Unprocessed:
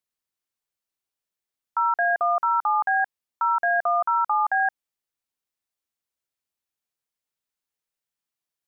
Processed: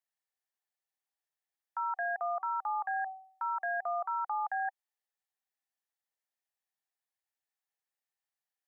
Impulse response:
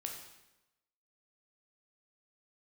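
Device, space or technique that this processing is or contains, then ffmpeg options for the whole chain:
laptop speaker: -filter_complex "[0:a]asplit=3[a][b][c];[a]afade=t=out:st=1.96:d=0.02[d];[b]bandreject=f=380.3:t=h:w=4,bandreject=f=760.6:t=h:w=4,bandreject=f=1.1409k:t=h:w=4,afade=t=in:st=1.96:d=0.02,afade=t=out:st=4.08:d=0.02[e];[c]afade=t=in:st=4.08:d=0.02[f];[d][e][f]amix=inputs=3:normalize=0,highpass=f=410:w=0.5412,highpass=f=410:w=1.3066,equalizer=f=780:t=o:w=0.37:g=9.5,equalizer=f=1.8k:t=o:w=0.26:g=10,alimiter=limit=-19.5dB:level=0:latency=1:release=27,volume=-7.5dB"

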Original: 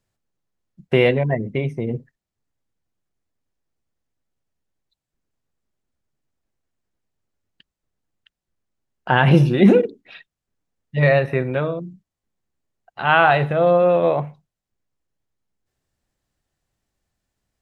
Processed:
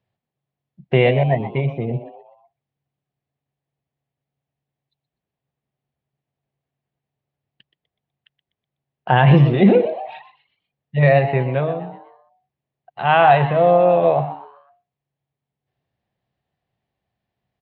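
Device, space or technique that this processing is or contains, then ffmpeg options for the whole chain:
frequency-shifting delay pedal into a guitar cabinet: -filter_complex "[0:a]asplit=5[a][b][c][d][e];[b]adelay=124,afreqshift=140,volume=-13.5dB[f];[c]adelay=248,afreqshift=280,volume=-21dB[g];[d]adelay=372,afreqshift=420,volume=-28.6dB[h];[e]adelay=496,afreqshift=560,volume=-36.1dB[i];[a][f][g][h][i]amix=inputs=5:normalize=0,highpass=83,equalizer=f=130:t=q:w=4:g=6,equalizer=f=290:t=q:w=4:g=-5,equalizer=f=720:t=q:w=4:g=6,equalizer=f=1.4k:t=q:w=4:g=-6,lowpass=f=3.7k:w=0.5412,lowpass=f=3.7k:w=1.3066"

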